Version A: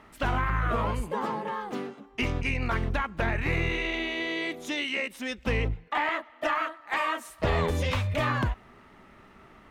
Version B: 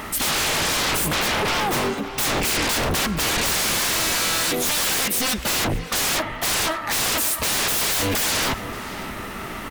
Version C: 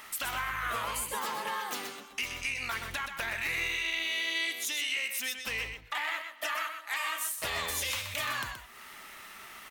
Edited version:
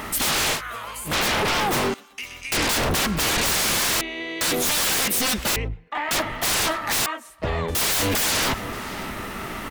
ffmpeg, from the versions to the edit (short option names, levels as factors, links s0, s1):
-filter_complex "[2:a]asplit=2[s0][s1];[0:a]asplit=3[s2][s3][s4];[1:a]asplit=6[s5][s6][s7][s8][s9][s10];[s5]atrim=end=0.62[s11];[s0]atrim=start=0.52:end=1.14[s12];[s6]atrim=start=1.04:end=1.942[s13];[s1]atrim=start=1.938:end=2.522[s14];[s7]atrim=start=2.518:end=4.012[s15];[s2]atrim=start=4.008:end=4.412[s16];[s8]atrim=start=4.408:end=5.562[s17];[s3]atrim=start=5.558:end=6.112[s18];[s9]atrim=start=6.108:end=7.062[s19];[s4]atrim=start=7.058:end=7.752[s20];[s10]atrim=start=7.748[s21];[s11][s12]acrossfade=d=0.1:c1=tri:c2=tri[s22];[s22][s13]acrossfade=d=0.1:c1=tri:c2=tri[s23];[s23][s14]acrossfade=d=0.004:c1=hsin:c2=hsin[s24];[s24][s15]acrossfade=d=0.004:c1=hsin:c2=hsin[s25];[s25][s16]acrossfade=d=0.004:c1=hsin:c2=hsin[s26];[s26][s17]acrossfade=d=0.004:c1=hsin:c2=hsin[s27];[s27][s18]acrossfade=d=0.004:c1=hsin:c2=hsin[s28];[s28][s19]acrossfade=d=0.004:c1=hsin:c2=hsin[s29];[s29][s20]acrossfade=d=0.004:c1=hsin:c2=hsin[s30];[s30][s21]acrossfade=d=0.004:c1=hsin:c2=hsin"